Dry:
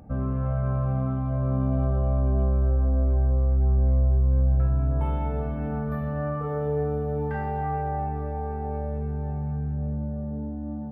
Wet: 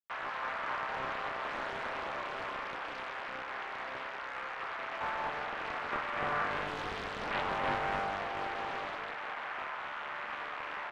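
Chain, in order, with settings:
bit reduction 6 bits
flat-topped band-pass 1,400 Hz, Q 1.2
echo with shifted repeats 221 ms, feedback 47%, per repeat −100 Hz, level −8.5 dB
highs frequency-modulated by the lows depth 0.96 ms
level +4 dB

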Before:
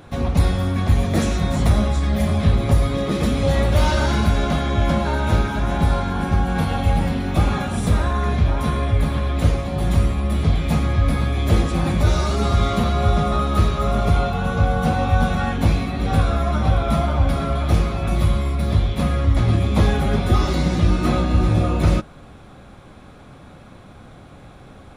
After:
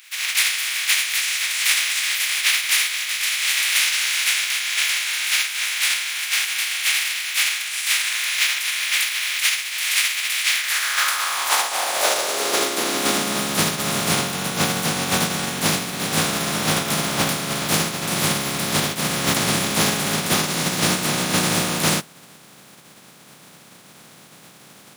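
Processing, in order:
compressing power law on the bin magnitudes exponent 0.25
high-pass filter sweep 2,200 Hz → 160 Hz, 0:10.48–0:13.64
level −4.5 dB

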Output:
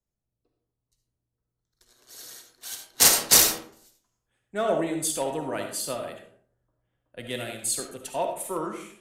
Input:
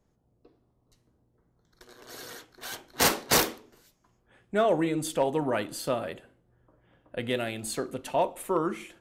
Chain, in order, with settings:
parametric band 9,100 Hz +12.5 dB 2.2 octaves
on a send at −4 dB: convolution reverb RT60 0.65 s, pre-delay 30 ms
on the sum: multiband upward and downward expander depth 40%
level −5 dB

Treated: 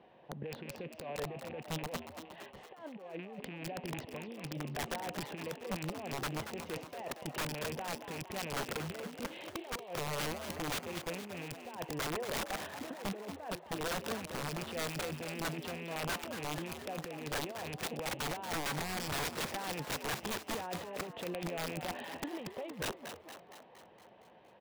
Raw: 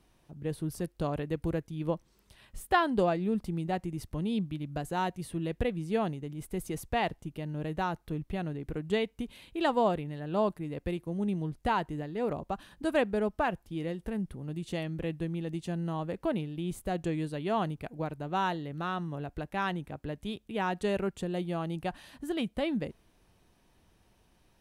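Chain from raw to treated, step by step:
loose part that buzzes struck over −36 dBFS, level −25 dBFS
compressor whose output falls as the input rises −37 dBFS, ratio −0.5
loudspeaker in its box 230–2,800 Hz, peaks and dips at 290 Hz −8 dB, 520 Hz +7 dB, 760 Hz +5 dB, 1,300 Hz −9 dB, 2,300 Hz −5 dB
wrap-around overflow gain 34 dB
on a send: echo with shifted repeats 232 ms, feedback 59%, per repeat +82 Hz, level −9 dB
on the sum: level +3 dB

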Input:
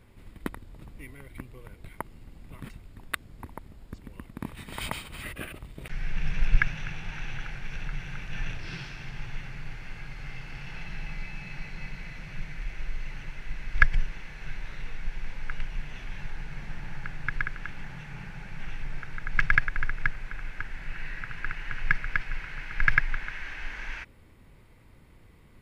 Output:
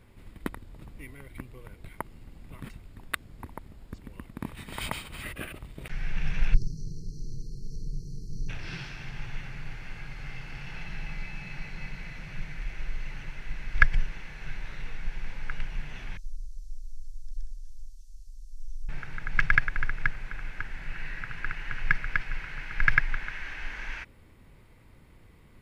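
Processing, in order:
0:06.54–0:08.49: time-frequency box erased 480–4,100 Hz
0:16.17–0:18.89: inverse Chebyshev band-stop filter 130–2,400 Hz, stop band 50 dB

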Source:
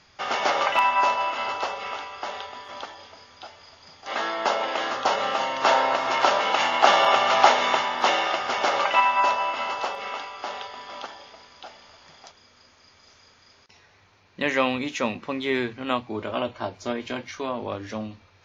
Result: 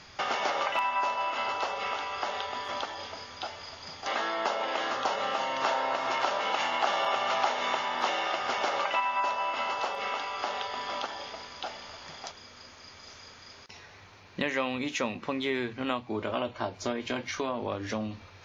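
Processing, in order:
downward compressor 3 to 1, threshold −37 dBFS, peak gain reduction 19 dB
level +6 dB

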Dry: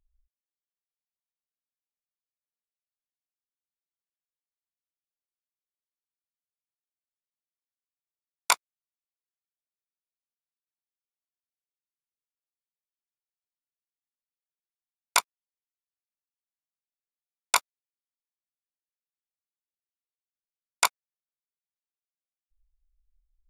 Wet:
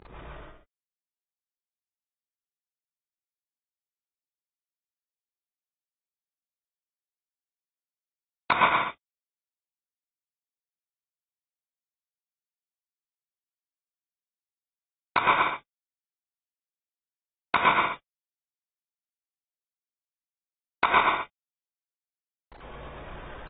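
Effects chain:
variable-slope delta modulation 64 kbit/s
high-pass filter 88 Hz 6 dB per octave
bass and treble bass +2 dB, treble −8 dB
in parallel at −1.5 dB: downward compressor 20 to 1, threshold −35 dBFS, peak gain reduction 17 dB
on the sum: brickwall limiter −13.5 dBFS, peak gain reduction 5.5 dB
reversed playback
upward compression, threshold −36 dBFS
reversed playback
high-frequency loss of the air 84 metres
loudspeakers that aren't time-aligned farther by 38 metres −3 dB, 57 metres −7 dB, 79 metres −12 dB
reverb whose tail is shaped and stops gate 160 ms rising, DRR −3 dB
level +5 dB
AAC 16 kbit/s 32,000 Hz

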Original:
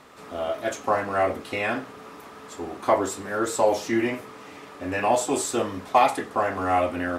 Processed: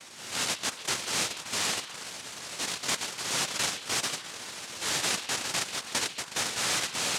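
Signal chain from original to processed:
cochlear-implant simulation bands 1
downward compressor 12 to 1, threshold −28 dBFS, peak gain reduction 16.5 dB
transient designer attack −4 dB, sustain −8 dB
echo through a band-pass that steps 139 ms, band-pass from 3,200 Hz, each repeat −1.4 octaves, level −10.5 dB
level +3 dB

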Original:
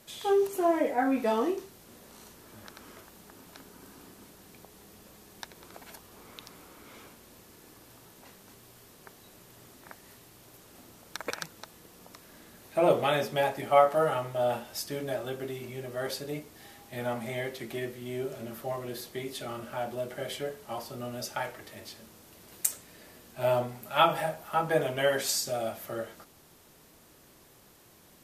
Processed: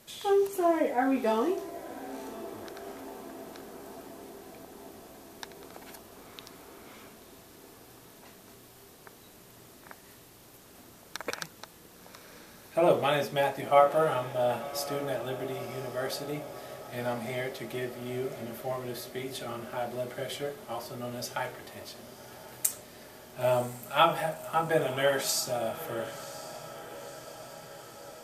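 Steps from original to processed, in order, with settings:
feedback delay with all-pass diffusion 1,029 ms, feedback 67%, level −15 dB

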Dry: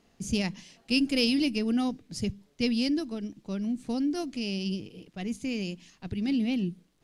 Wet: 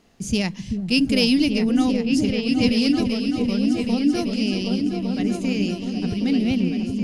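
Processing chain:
echo whose low-pass opens from repeat to repeat 386 ms, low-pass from 200 Hz, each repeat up 2 octaves, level 0 dB
level +6 dB

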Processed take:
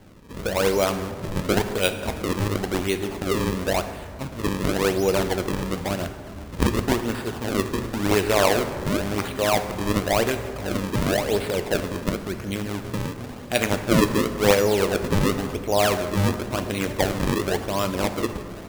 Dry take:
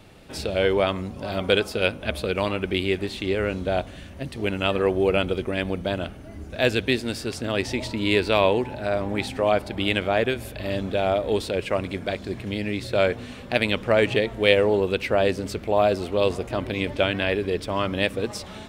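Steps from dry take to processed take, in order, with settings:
0:12.54–0:13.18: downward compressor 6 to 1, threshold −24 dBFS, peak gain reduction 8.5 dB
sample-and-hold swept by an LFO 35×, swing 160% 0.94 Hz
dense smooth reverb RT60 2 s, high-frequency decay 0.5×, DRR 8 dB

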